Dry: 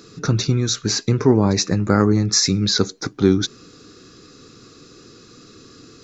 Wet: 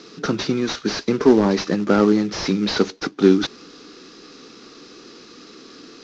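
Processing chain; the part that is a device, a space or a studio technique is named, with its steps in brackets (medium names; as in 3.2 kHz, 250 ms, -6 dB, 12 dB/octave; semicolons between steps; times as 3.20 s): early wireless headset (high-pass 200 Hz 24 dB/octave; CVSD coder 32 kbps); trim +3 dB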